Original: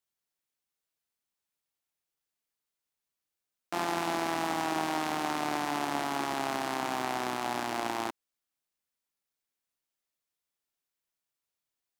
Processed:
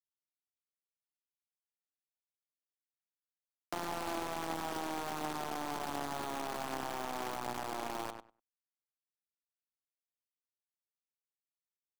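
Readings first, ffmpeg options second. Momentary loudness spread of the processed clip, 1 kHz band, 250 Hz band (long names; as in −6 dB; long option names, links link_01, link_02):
3 LU, −7.0 dB, −7.5 dB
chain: -filter_complex "[0:a]acrossover=split=160|1300[link_01][link_02][link_03];[link_01]acompressor=threshold=-55dB:ratio=4[link_04];[link_02]acompressor=threshold=-38dB:ratio=4[link_05];[link_03]acompressor=threshold=-49dB:ratio=4[link_06];[link_04][link_05][link_06]amix=inputs=3:normalize=0,acrusher=bits=7:dc=4:mix=0:aa=0.000001,asplit=2[link_07][link_08];[link_08]adelay=98,lowpass=frequency=3000:poles=1,volume=-6.5dB,asplit=2[link_09][link_10];[link_10]adelay=98,lowpass=frequency=3000:poles=1,volume=0.16,asplit=2[link_11][link_12];[link_12]adelay=98,lowpass=frequency=3000:poles=1,volume=0.16[link_13];[link_07][link_09][link_11][link_13]amix=inputs=4:normalize=0"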